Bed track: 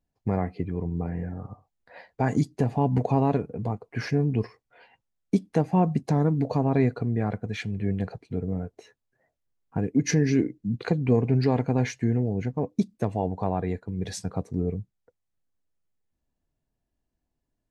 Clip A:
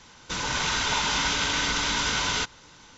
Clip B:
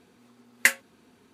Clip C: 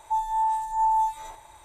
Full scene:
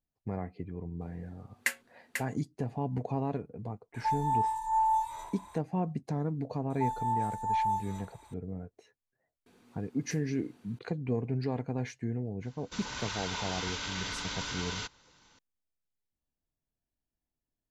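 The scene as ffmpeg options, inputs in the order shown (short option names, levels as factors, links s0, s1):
-filter_complex "[2:a]asplit=2[s0][s1];[3:a]asplit=2[s2][s3];[0:a]volume=0.316[s4];[s0]aecho=1:1:492:0.501[s5];[s2]asplit=6[s6][s7][s8][s9][s10][s11];[s7]adelay=155,afreqshift=38,volume=0.112[s12];[s8]adelay=310,afreqshift=76,volume=0.0653[s13];[s9]adelay=465,afreqshift=114,volume=0.0376[s14];[s10]adelay=620,afreqshift=152,volume=0.0219[s15];[s11]adelay=775,afreqshift=190,volume=0.0127[s16];[s6][s12][s13][s14][s15][s16]amix=inputs=6:normalize=0[s17];[s1]acompressor=threshold=0.00631:ratio=6:attack=3.2:release=140:knee=1:detection=peak[s18];[1:a]equalizer=f=4400:w=7.9:g=3.5[s19];[s5]atrim=end=1.33,asetpts=PTS-STARTPTS,volume=0.299,afade=t=in:d=0.004:c=hsin,afade=t=out:st=1.326:d=0.004:c=hsin,adelay=1010[s20];[s17]atrim=end=1.64,asetpts=PTS-STARTPTS,volume=0.596,afade=t=in:d=0.004:c=hsin,afade=t=out:st=1.636:d=0.004:c=hsin,adelay=3940[s21];[s3]atrim=end=1.64,asetpts=PTS-STARTPTS,volume=0.447,afade=t=in:d=0.004:c=hsin,afade=t=out:st=1.636:d=0.004:c=hsin,adelay=6700[s22];[s18]atrim=end=1.33,asetpts=PTS-STARTPTS,volume=0.708,afade=t=in:d=0.004:c=hsin,afade=t=out:st=1.326:d=0.004:c=hsin,adelay=417186S[s23];[s19]atrim=end=2.97,asetpts=PTS-STARTPTS,volume=0.251,afade=t=in:d=0.004:c=hsin,afade=t=out:st=2.966:d=0.004:c=hsin,adelay=12420[s24];[s4][s20][s21][s22][s23][s24]amix=inputs=6:normalize=0"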